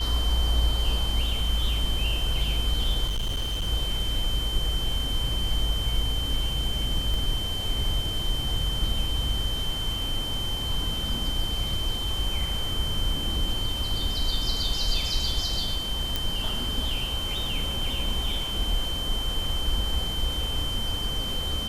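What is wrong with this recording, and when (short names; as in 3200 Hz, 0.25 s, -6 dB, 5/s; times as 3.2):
tone 3100 Hz -30 dBFS
3.07–3.68 clipped -24 dBFS
7.14 pop
16.16 pop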